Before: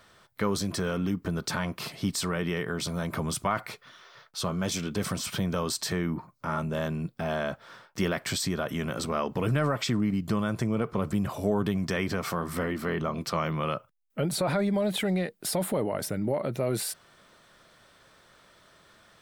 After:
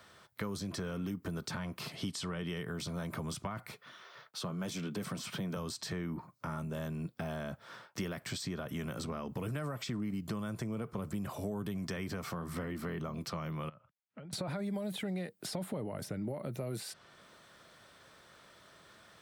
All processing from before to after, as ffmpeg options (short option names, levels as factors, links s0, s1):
-filter_complex "[0:a]asettb=1/sr,asplit=3[s0][s1][s2];[s0]atrim=end=1.964[s3];[s1]atrim=start=1.96:end=2.63,asetpts=PTS-STARTPTS,afade=t=in:d=0.004:c=qsin,afade=t=out:st=0.666:d=0.004:c=qsin,lowpass=f=12000:w=0.5412,lowpass=f=12000:w=1.3066,equalizer=f=3100:w=6.5:g=7[s4];[s2]atrim=start=2.626[s5];[s3][s4]acrossfade=d=0.004:c1=hsin:c2=qsin[s6];[s6][s5]acrossfade=d=0.004:c1=qsin:c2=hsin,asettb=1/sr,asplit=3[s7][s8][s9];[s7]atrim=end=3.714[s10];[s8]atrim=start=3.71:end=5.57,asetpts=PTS-STARTPTS,afade=t=in:d=0.004:c=qsin,afade=t=out:st=1.856:d=0.004:c=qsin,highpass=f=120:w=0.5412,highpass=f=120:w=1.3066,equalizer=f=5800:w=0.94:g=-3.5[s11];[s9]atrim=start=5.566[s12];[s10][s11]acrossfade=d=0.004:c1=hsin:c2=qsin[s13];[s13][s12]acrossfade=d=0.004:c1=qsin:c2=hsin,asettb=1/sr,asplit=3[s14][s15][s16];[s14]atrim=end=13.694[s17];[s15]atrim=start=13.69:end=14.33,asetpts=PTS-STARTPTS,afade=t=in:d=0.004:c=qsin,afade=t=out:st=0.636:d=0.004:c=qsin,equalizer=f=400:t=o:w=1.1:g=-6.5,acompressor=threshold=0.00708:ratio=20:attack=3.2:release=140:knee=1:detection=peak,lowpass=2700[s18];[s16]atrim=start=14.326[s19];[s17][s18]acrossfade=d=0.004:c1=hsin:c2=qsin[s20];[s20][s19]acrossfade=d=0.004:c1=qsin:c2=hsin,highpass=53,acrossover=split=220|7100[s21][s22][s23];[s21]acompressor=threshold=0.0112:ratio=4[s24];[s22]acompressor=threshold=0.01:ratio=4[s25];[s23]acompressor=threshold=0.002:ratio=4[s26];[s24][s25][s26]amix=inputs=3:normalize=0,volume=0.891"